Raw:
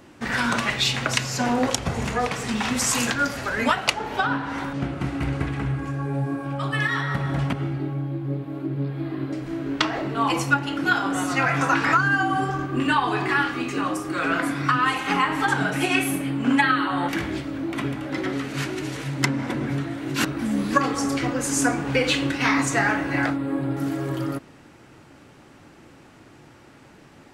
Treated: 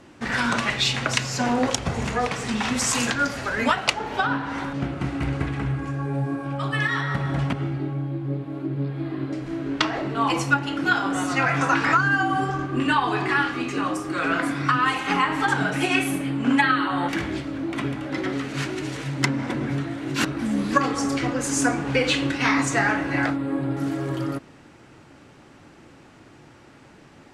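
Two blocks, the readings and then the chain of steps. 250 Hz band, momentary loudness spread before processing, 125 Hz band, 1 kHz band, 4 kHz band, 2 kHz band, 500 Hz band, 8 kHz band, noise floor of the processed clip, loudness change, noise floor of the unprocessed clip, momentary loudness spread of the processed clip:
0.0 dB, 8 LU, 0.0 dB, 0.0 dB, 0.0 dB, 0.0 dB, 0.0 dB, -1.0 dB, -50 dBFS, 0.0 dB, -50 dBFS, 8 LU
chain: LPF 9900 Hz 12 dB/oct

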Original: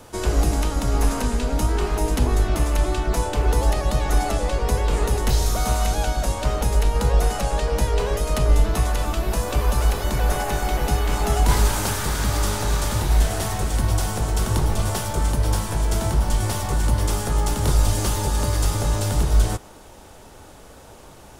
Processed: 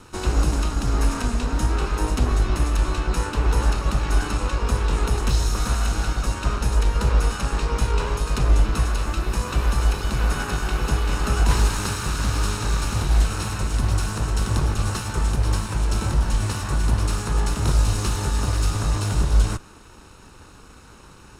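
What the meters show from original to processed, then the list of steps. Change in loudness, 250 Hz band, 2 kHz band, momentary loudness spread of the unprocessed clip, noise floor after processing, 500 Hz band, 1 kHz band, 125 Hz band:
-1.0 dB, -1.0 dB, +0.5 dB, 3 LU, -46 dBFS, -5.0 dB, -2.5 dB, 0.0 dB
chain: minimum comb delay 0.74 ms; LPF 9100 Hz 12 dB/oct

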